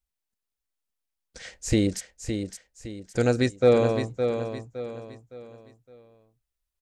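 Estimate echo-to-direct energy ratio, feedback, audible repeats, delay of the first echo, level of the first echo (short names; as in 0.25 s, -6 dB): -7.0 dB, 37%, 4, 0.563 s, -7.5 dB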